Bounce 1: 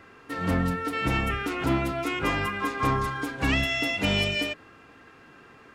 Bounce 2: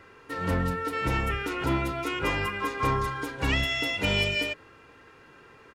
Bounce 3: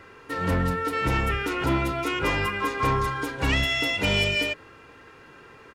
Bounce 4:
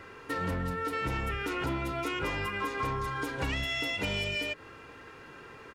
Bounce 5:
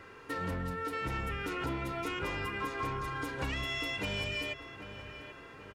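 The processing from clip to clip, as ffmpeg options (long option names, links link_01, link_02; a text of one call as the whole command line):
ffmpeg -i in.wav -af "aecho=1:1:2.1:0.37,volume=-1.5dB" out.wav
ffmpeg -i in.wav -af "asoftclip=type=tanh:threshold=-18.5dB,volume=4dB" out.wav
ffmpeg -i in.wav -af "acompressor=threshold=-30dB:ratio=6" out.wav
ffmpeg -i in.wav -filter_complex "[0:a]asplit=2[link_01][link_02];[link_02]adelay=785,lowpass=frequency=2600:poles=1,volume=-11dB,asplit=2[link_03][link_04];[link_04]adelay=785,lowpass=frequency=2600:poles=1,volume=0.51,asplit=2[link_05][link_06];[link_06]adelay=785,lowpass=frequency=2600:poles=1,volume=0.51,asplit=2[link_07][link_08];[link_08]adelay=785,lowpass=frequency=2600:poles=1,volume=0.51,asplit=2[link_09][link_10];[link_10]adelay=785,lowpass=frequency=2600:poles=1,volume=0.51[link_11];[link_01][link_03][link_05][link_07][link_09][link_11]amix=inputs=6:normalize=0,volume=-3.5dB" out.wav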